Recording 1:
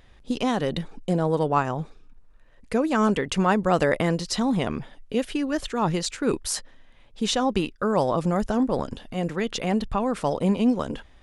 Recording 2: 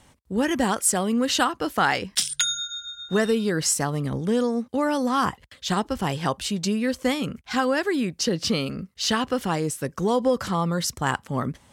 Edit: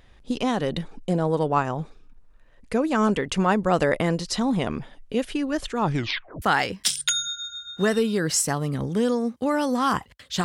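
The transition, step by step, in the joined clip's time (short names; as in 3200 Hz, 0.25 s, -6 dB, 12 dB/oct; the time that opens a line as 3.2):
recording 1
5.85 tape stop 0.57 s
6.42 switch to recording 2 from 1.74 s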